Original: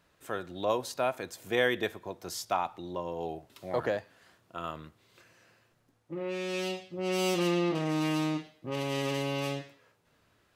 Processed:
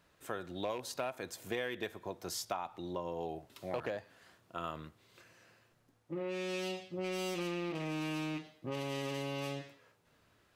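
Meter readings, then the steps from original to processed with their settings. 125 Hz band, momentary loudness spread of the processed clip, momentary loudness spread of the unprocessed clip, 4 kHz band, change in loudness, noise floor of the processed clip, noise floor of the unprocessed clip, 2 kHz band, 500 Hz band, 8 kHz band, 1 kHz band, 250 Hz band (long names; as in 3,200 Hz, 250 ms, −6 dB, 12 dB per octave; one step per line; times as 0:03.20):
−7.0 dB, 7 LU, 12 LU, −6.5 dB, −7.0 dB, −71 dBFS, −70 dBFS, −7.5 dB, −7.0 dB, −4.5 dB, −7.5 dB, −7.5 dB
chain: loose part that buzzes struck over −37 dBFS, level −29 dBFS
downward compressor 6 to 1, threshold −33 dBFS, peak gain reduction 11.5 dB
level −1 dB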